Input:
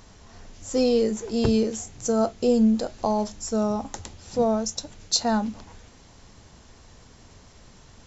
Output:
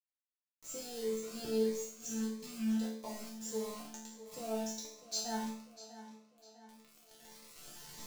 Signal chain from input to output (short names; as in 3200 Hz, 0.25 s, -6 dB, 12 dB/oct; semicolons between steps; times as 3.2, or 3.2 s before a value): recorder AGC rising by 6.1 dB/s; spectral repair 1.79–2.71, 260–1500 Hz; tone controls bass -8 dB, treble +2 dB; in parallel at -2 dB: compressor 5:1, threshold -40 dBFS, peak gain reduction 21 dB; on the sum: bit-crush 5-bit; resonator bank D3 minor, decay 0.63 s; on a send: tape echo 0.649 s, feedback 54%, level -13 dB, low-pass 5100 Hz; on the sum: cascading phaser rising 1.6 Hz; gain +2 dB